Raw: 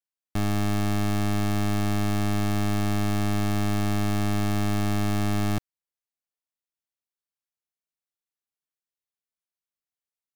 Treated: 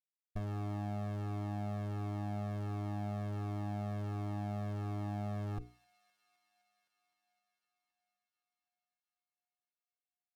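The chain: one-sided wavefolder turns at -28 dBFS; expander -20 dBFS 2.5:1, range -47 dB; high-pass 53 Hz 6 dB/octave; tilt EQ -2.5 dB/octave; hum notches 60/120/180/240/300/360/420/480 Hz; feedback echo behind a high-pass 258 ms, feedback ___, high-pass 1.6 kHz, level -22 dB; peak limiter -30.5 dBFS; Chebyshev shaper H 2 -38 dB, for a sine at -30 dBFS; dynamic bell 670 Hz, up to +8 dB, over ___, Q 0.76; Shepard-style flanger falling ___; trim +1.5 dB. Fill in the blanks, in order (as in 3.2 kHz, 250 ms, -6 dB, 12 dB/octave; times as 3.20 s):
80%, -57 dBFS, 1.4 Hz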